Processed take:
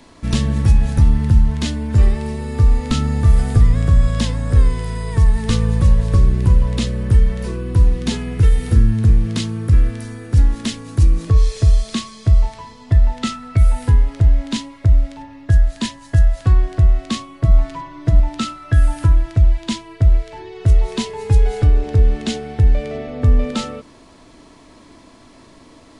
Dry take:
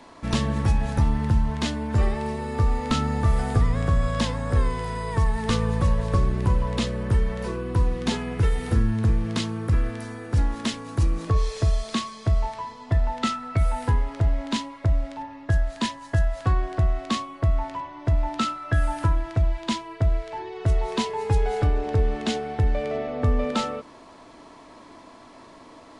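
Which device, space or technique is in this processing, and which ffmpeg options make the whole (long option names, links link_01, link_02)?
smiley-face EQ: -filter_complex "[0:a]lowshelf=frequency=130:gain=7.5,equalizer=frequency=900:width_type=o:width=1.7:gain=-7,highshelf=frequency=8000:gain=5.5,asettb=1/sr,asplit=3[link_01][link_02][link_03];[link_01]atrim=end=17.444[link_04];[link_02]atrim=start=17.44:end=18.2,asetpts=PTS-STARTPTS,afade=type=in:duration=0.004:curve=qsin,afade=type=out:start_time=0.756:duration=0.004:curve=qsin,aecho=1:1:6.2:0.9,atrim=end_sample=33516[link_05];[link_03]atrim=start=18.196[link_06];[link_04][link_05]acrossfade=duration=0.004:curve1=hsin:curve2=qsin[link_07];[link_07][link_06]acrossfade=duration=0.004:curve1=qsin:curve2=hsin,volume=3.5dB"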